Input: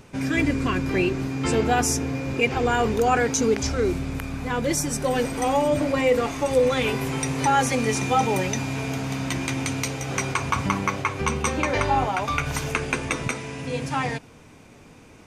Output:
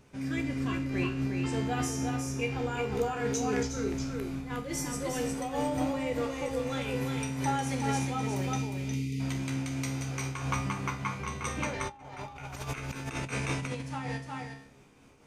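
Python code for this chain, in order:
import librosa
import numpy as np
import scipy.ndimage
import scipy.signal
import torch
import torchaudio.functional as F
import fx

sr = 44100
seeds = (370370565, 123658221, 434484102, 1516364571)

p1 = fx.rev_schroeder(x, sr, rt60_s=0.32, comb_ms=33, drr_db=12.5)
p2 = fx.spec_box(p1, sr, start_s=8.58, length_s=0.62, low_hz=490.0, high_hz=1900.0, gain_db=-29)
p3 = fx.comb_fb(p2, sr, f0_hz=68.0, decay_s=0.5, harmonics='all', damping=0.0, mix_pct=80)
p4 = p3 + fx.echo_single(p3, sr, ms=359, db=-4.5, dry=0)
p5 = fx.over_compress(p4, sr, threshold_db=-36.0, ratio=-0.5, at=(11.87, 13.81), fade=0.02)
y = fx.am_noise(p5, sr, seeds[0], hz=5.7, depth_pct=65)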